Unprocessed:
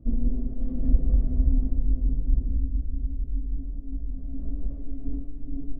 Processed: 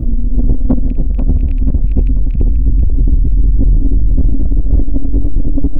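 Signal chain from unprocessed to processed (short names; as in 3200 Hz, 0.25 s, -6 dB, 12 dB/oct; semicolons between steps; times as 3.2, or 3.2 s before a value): rattling part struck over -16 dBFS, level -30 dBFS; low shelf 200 Hz +7 dB; negative-ratio compressor -25 dBFS, ratio -1; soft clip -22.5 dBFS, distortion -11 dB; on a send: thinning echo 0.486 s, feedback 51%, high-pass 420 Hz, level -8 dB; on the sum: maximiser +24 dB; gain -3.5 dB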